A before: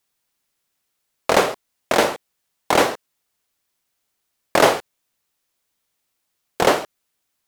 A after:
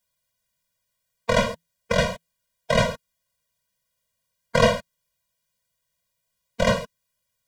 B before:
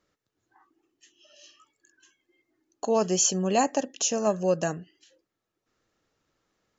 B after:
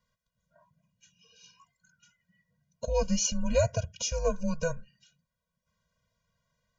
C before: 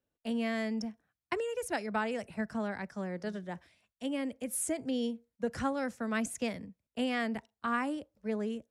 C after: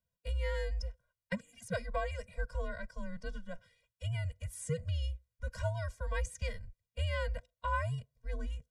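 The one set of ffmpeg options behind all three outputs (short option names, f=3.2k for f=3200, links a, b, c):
-filter_complex "[0:a]acrossover=split=7700[a][b];[b]acompressor=threshold=-49dB:ratio=4:attack=1:release=60[c];[a][c]amix=inputs=2:normalize=0,afreqshift=-170,afftfilt=real='re*eq(mod(floor(b*sr/1024/230),2),0)':imag='im*eq(mod(floor(b*sr/1024/230),2),0)':win_size=1024:overlap=0.75"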